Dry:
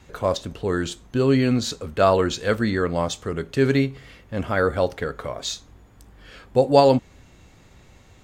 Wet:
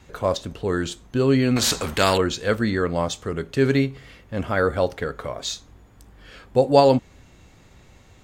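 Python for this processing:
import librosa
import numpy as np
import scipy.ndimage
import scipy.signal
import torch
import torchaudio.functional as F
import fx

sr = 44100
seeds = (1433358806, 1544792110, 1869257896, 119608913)

y = fx.spectral_comp(x, sr, ratio=2.0, at=(1.56, 2.18))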